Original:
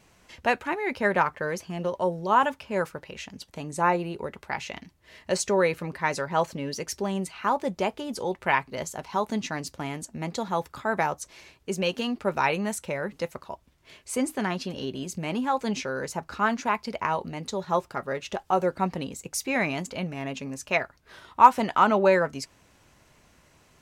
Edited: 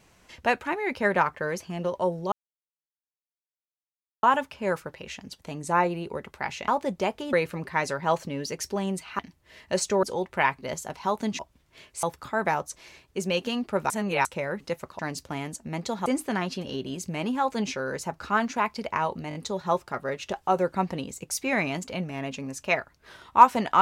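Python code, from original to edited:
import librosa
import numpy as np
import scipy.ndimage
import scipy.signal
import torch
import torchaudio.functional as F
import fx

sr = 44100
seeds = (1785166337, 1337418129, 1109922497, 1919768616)

y = fx.edit(x, sr, fx.insert_silence(at_s=2.32, length_s=1.91),
    fx.swap(start_s=4.77, length_s=0.84, other_s=7.47, other_length_s=0.65),
    fx.swap(start_s=9.48, length_s=1.07, other_s=13.51, other_length_s=0.64),
    fx.reverse_span(start_s=12.42, length_s=0.35),
    fx.stutter(start_s=17.38, slice_s=0.02, count=4), tone=tone)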